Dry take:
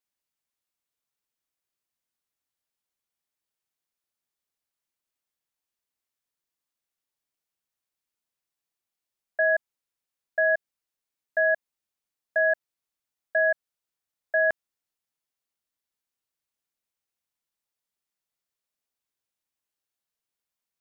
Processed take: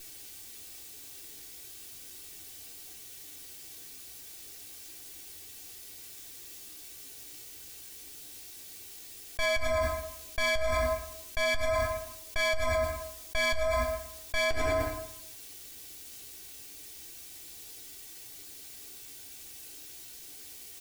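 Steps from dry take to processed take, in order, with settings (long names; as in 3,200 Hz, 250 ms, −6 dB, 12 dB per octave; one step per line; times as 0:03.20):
lower of the sound and its delayed copy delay 2.6 ms
parametric band 1,100 Hz −12.5 dB 1.7 octaves
slap from a distant wall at 18 metres, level −27 dB
feedback delay network reverb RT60 0.75 s, low-frequency decay 1.1×, high-frequency decay 0.7×, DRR 12.5 dB
brickwall limiter −26.5 dBFS, peak gain reduction 7.5 dB
flanger 0.33 Hz, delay 8.6 ms, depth 8.8 ms, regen +45%
envelope flattener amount 100%
level +7.5 dB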